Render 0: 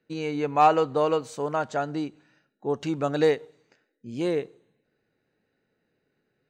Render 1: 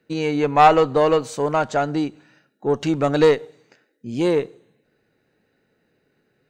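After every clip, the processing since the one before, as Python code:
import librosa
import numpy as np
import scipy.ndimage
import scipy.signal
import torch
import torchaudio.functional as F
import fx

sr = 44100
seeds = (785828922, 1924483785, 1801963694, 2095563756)

y = fx.diode_clip(x, sr, knee_db=-15.0)
y = F.gain(torch.from_numpy(y), 8.0).numpy()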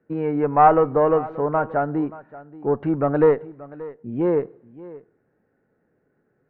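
y = scipy.signal.sosfilt(scipy.signal.butter(4, 1600.0, 'lowpass', fs=sr, output='sos'), x)
y = y + 10.0 ** (-18.5 / 20.0) * np.pad(y, (int(580 * sr / 1000.0), 0))[:len(y)]
y = F.gain(torch.from_numpy(y), -1.0).numpy()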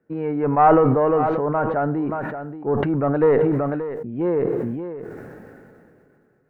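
y = fx.sustainer(x, sr, db_per_s=22.0)
y = F.gain(torch.from_numpy(y), -1.5).numpy()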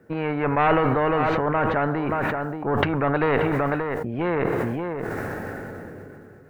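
y = fx.peak_eq(x, sr, hz=96.0, db=11.5, octaves=0.24)
y = fx.spectral_comp(y, sr, ratio=2.0)
y = F.gain(torch.from_numpy(y), -2.0).numpy()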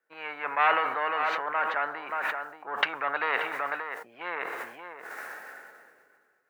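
y = scipy.signal.sosfilt(scipy.signal.butter(2, 1100.0, 'highpass', fs=sr, output='sos'), x)
y = fx.band_widen(y, sr, depth_pct=40)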